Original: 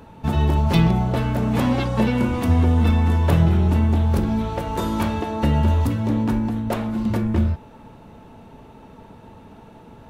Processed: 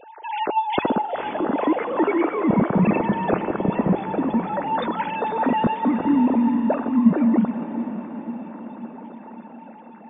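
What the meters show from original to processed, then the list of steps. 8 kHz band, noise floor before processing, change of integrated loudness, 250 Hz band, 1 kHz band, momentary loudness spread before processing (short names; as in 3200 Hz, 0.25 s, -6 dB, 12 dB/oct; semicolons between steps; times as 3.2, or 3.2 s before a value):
under -35 dB, -45 dBFS, -1.5 dB, +1.5 dB, +5.0 dB, 7 LU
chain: sine-wave speech; loudest bins only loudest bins 64; diffused feedback echo 0.489 s, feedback 62%, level -10.5 dB; gain -2.5 dB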